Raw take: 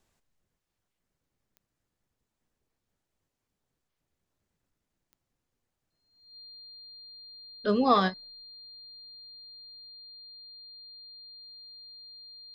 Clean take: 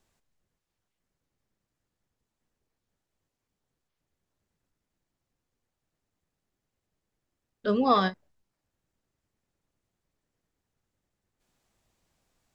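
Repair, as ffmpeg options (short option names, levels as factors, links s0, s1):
-af "adeclick=t=4,bandreject=f=4200:w=30,asetnsamples=n=441:p=0,asendcmd='9.89 volume volume 9dB',volume=1"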